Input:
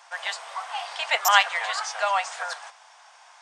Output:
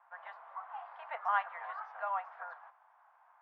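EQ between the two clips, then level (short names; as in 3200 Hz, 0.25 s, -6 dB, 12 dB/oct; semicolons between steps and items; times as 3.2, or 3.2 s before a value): HPF 600 Hz 6 dB/oct; LPF 1200 Hz 24 dB/oct; tilt +5 dB/oct; -8.0 dB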